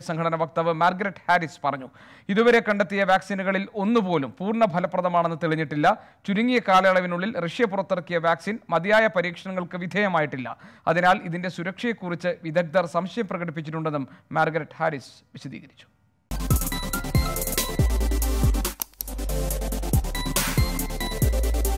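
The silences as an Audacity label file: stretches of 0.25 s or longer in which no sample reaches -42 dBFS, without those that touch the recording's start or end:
15.820000	16.310000	silence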